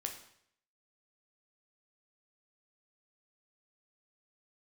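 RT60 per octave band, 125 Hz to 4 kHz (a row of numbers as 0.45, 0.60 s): 0.75, 0.65, 0.70, 0.65, 0.65, 0.65 s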